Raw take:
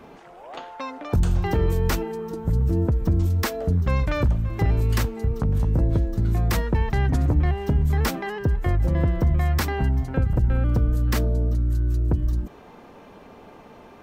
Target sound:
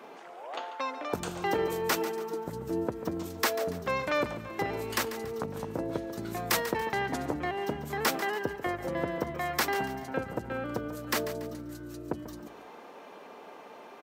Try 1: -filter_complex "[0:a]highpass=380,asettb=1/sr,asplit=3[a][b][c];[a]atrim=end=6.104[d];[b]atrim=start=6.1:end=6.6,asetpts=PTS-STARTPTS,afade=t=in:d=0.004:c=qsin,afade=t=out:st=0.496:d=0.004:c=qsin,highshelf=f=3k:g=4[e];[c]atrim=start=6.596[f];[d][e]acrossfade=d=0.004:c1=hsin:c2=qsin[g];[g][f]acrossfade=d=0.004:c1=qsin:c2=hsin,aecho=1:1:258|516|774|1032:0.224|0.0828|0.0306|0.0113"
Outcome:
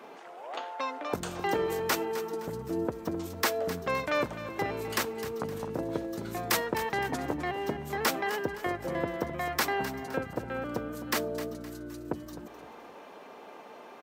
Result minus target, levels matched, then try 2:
echo 0.116 s late
-filter_complex "[0:a]highpass=380,asettb=1/sr,asplit=3[a][b][c];[a]atrim=end=6.104[d];[b]atrim=start=6.1:end=6.6,asetpts=PTS-STARTPTS,afade=t=in:d=0.004:c=qsin,afade=t=out:st=0.496:d=0.004:c=qsin,highshelf=f=3k:g=4[e];[c]atrim=start=6.596[f];[d][e]acrossfade=d=0.004:c1=hsin:c2=qsin[g];[g][f]acrossfade=d=0.004:c1=qsin:c2=hsin,aecho=1:1:142|284|426|568:0.224|0.0828|0.0306|0.0113"

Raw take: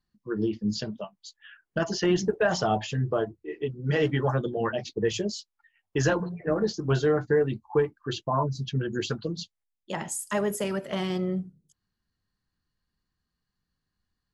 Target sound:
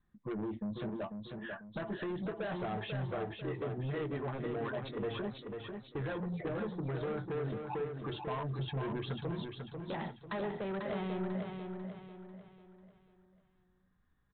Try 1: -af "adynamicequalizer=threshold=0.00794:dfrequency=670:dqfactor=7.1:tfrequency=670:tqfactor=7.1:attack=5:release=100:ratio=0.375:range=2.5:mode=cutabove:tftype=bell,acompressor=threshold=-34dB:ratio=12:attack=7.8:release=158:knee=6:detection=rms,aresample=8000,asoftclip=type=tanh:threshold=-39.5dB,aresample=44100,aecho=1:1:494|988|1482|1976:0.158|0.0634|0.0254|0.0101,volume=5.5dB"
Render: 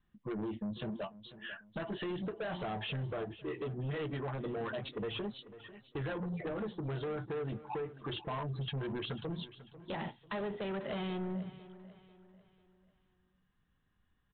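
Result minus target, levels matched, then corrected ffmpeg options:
echo-to-direct -10.5 dB; 4000 Hz band +4.5 dB
-af "adynamicequalizer=threshold=0.00794:dfrequency=670:dqfactor=7.1:tfrequency=670:tqfactor=7.1:attack=5:release=100:ratio=0.375:range=2.5:mode=cutabove:tftype=bell,acompressor=threshold=-34dB:ratio=12:attack=7.8:release=158:knee=6:detection=rms,equalizer=f=2.9k:t=o:w=0.41:g=-11.5,aresample=8000,asoftclip=type=tanh:threshold=-39.5dB,aresample=44100,aecho=1:1:494|988|1482|1976|2470:0.531|0.212|0.0849|0.034|0.0136,volume=5.5dB"

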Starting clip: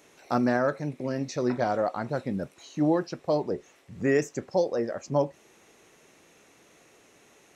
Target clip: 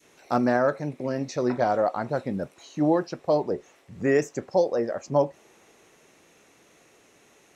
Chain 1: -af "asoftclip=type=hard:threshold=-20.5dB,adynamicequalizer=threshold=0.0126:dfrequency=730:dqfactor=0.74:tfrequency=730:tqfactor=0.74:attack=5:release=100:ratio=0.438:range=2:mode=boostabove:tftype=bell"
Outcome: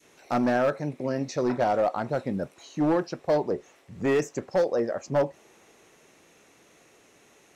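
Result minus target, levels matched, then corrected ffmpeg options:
hard clip: distortion +32 dB
-af "asoftclip=type=hard:threshold=-12dB,adynamicequalizer=threshold=0.0126:dfrequency=730:dqfactor=0.74:tfrequency=730:tqfactor=0.74:attack=5:release=100:ratio=0.438:range=2:mode=boostabove:tftype=bell"

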